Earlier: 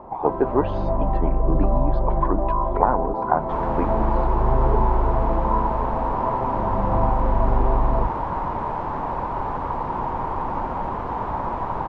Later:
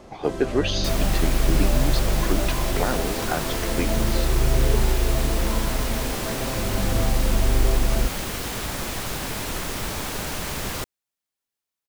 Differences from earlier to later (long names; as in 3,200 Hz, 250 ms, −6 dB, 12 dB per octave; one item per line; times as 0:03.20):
second sound: entry −2.65 s
master: remove low-pass with resonance 950 Hz, resonance Q 6.7